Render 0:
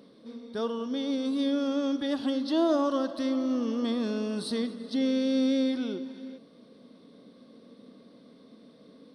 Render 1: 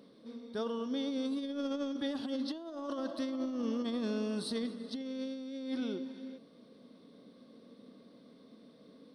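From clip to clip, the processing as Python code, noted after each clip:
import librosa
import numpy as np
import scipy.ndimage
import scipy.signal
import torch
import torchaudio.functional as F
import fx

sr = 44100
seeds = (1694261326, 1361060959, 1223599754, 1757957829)

y = fx.over_compress(x, sr, threshold_db=-29.0, ratio=-0.5)
y = y * librosa.db_to_amplitude(-6.0)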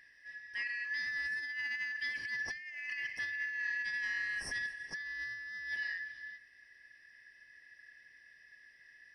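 y = fx.band_shuffle(x, sr, order='4123')
y = y * librosa.db_to_amplitude(-2.5)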